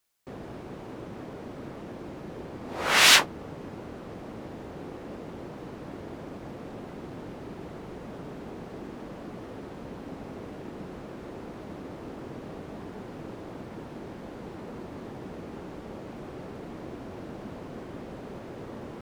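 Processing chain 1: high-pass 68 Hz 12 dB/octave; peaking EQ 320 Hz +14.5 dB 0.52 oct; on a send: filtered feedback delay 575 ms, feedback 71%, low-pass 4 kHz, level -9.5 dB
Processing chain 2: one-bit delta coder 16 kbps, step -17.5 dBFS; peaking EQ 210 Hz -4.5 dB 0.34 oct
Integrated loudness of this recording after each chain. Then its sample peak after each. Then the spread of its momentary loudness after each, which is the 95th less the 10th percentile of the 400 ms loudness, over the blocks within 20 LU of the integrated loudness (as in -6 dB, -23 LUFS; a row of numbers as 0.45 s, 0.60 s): -29.5 LUFS, -24.5 LUFS; -2.5 dBFS, -9.0 dBFS; 6 LU, 0 LU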